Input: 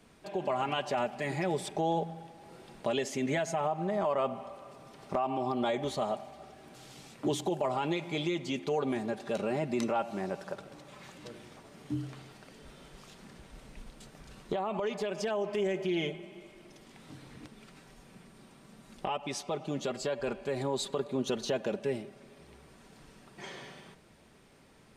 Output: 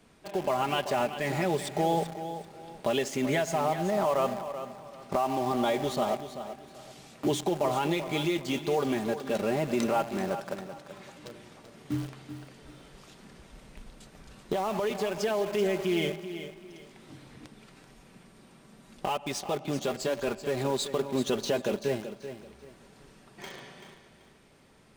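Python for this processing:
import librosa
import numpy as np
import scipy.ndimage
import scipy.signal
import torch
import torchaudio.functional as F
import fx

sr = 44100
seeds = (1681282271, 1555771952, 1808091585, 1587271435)

p1 = fx.quant_dither(x, sr, seeds[0], bits=6, dither='none')
p2 = x + (p1 * 10.0 ** (-7.0 / 20.0))
y = fx.echo_feedback(p2, sr, ms=384, feedback_pct=27, wet_db=-11)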